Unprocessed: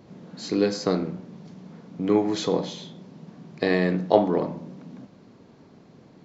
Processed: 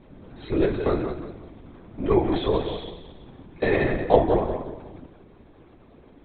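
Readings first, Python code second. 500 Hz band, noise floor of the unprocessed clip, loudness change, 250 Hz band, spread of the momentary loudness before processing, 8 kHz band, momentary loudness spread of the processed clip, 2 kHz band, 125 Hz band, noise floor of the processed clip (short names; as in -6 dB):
+1.5 dB, -53 dBFS, +0.5 dB, -1.5 dB, 23 LU, n/a, 20 LU, +1.5 dB, +2.0 dB, -52 dBFS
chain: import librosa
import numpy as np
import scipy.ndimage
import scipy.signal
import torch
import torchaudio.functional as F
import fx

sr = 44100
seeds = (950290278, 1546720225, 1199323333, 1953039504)

y = fx.peak_eq(x, sr, hz=170.0, db=-8.5, octaves=0.32)
y = fx.notch(y, sr, hz=2900.0, q=23.0)
y = fx.echo_feedback(y, sr, ms=178, feedback_pct=37, wet_db=-8.0)
y = fx.lpc_vocoder(y, sr, seeds[0], excitation='whisper', order=16)
y = y * 10.0 ** (1.0 / 20.0)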